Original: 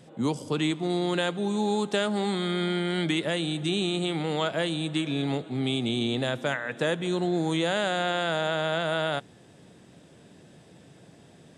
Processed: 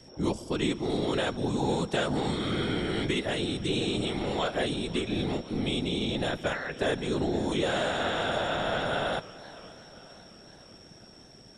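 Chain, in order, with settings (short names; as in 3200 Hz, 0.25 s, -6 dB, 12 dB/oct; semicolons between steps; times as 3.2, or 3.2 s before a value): whine 5500 Hz -52 dBFS; whisperiser; warbling echo 0.523 s, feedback 56%, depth 215 cents, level -19 dB; gain -2 dB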